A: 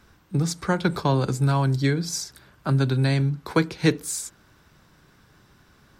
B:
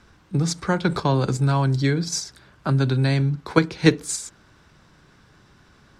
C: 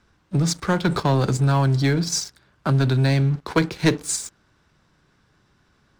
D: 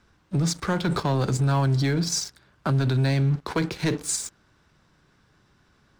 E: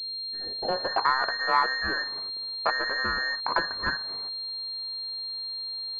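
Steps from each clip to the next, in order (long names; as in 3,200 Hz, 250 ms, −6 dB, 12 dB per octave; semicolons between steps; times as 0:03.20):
low-pass filter 8,200 Hz 12 dB per octave; in parallel at +1 dB: output level in coarse steps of 16 dB; on the sum: level −1 dB
leveller curve on the samples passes 2; in parallel at −3 dB: soft clipping −16 dBFS, distortion −10 dB; on the sum: level −8.5 dB
brickwall limiter −17 dBFS, peak gain reduction 8 dB
frequency inversion band by band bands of 2,000 Hz; low-pass filter sweep 310 Hz → 1,100 Hz, 0:00.31–0:01.01; switching amplifier with a slow clock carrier 4,200 Hz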